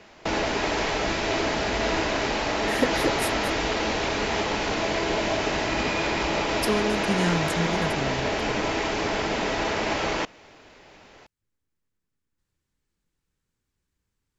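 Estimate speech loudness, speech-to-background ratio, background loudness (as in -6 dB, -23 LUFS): -29.5 LUFS, -4.0 dB, -25.5 LUFS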